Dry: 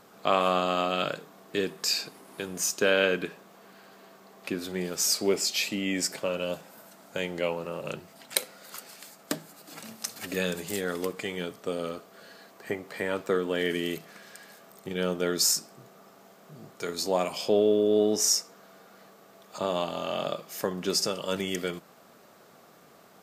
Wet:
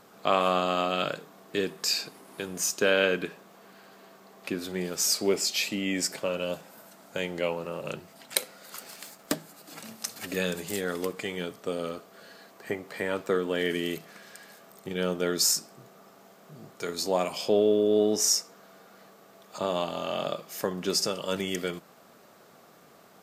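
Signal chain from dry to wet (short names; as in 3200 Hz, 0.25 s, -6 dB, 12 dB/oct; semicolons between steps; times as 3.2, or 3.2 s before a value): 8.8–9.34 sample leveller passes 1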